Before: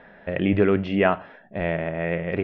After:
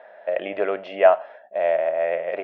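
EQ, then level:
high-pass with resonance 620 Hz, resonance Q 4.6
−3.5 dB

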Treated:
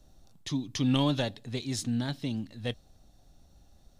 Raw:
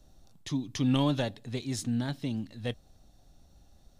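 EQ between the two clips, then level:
dynamic equaliser 4,100 Hz, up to +4 dB, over −51 dBFS, Q 1
0.0 dB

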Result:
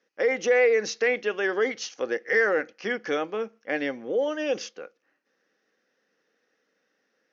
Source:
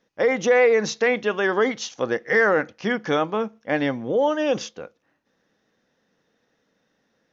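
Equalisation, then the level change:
notch filter 870 Hz, Q 13
dynamic equaliser 1,200 Hz, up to −6 dB, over −36 dBFS, Q 1.6
loudspeaker in its box 400–6,200 Hz, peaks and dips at 660 Hz −7 dB, 1,000 Hz −7 dB, 3,600 Hz −8 dB
0.0 dB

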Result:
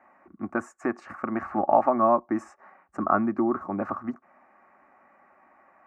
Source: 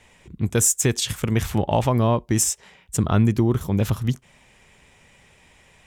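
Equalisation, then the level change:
high-pass filter 260 Hz 12 dB per octave
low-pass with resonance 1,100 Hz, resonance Q 12
phaser with its sweep stopped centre 680 Hz, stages 8
0.0 dB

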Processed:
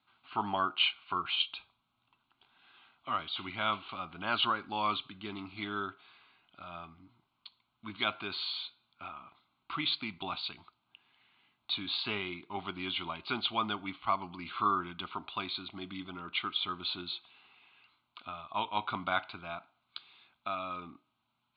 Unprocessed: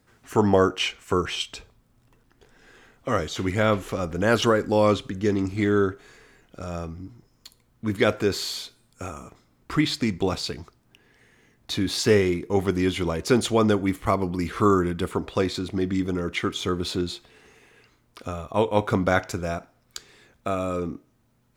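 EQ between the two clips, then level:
high-pass filter 1,300 Hz 6 dB per octave
Butterworth low-pass 4,400 Hz 96 dB per octave
phaser with its sweep stopped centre 1,800 Hz, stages 6
0.0 dB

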